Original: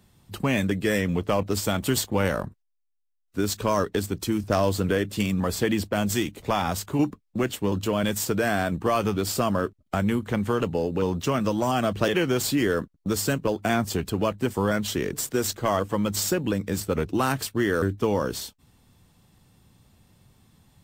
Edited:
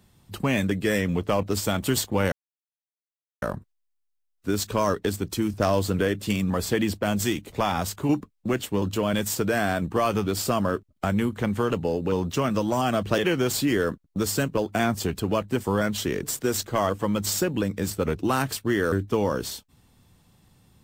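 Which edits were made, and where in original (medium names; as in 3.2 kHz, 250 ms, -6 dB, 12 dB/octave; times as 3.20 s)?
2.32 s: insert silence 1.10 s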